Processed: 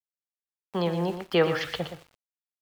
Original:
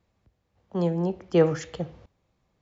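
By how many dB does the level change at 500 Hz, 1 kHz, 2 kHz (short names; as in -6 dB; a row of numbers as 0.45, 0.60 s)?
-1.5, +3.5, +8.0 dB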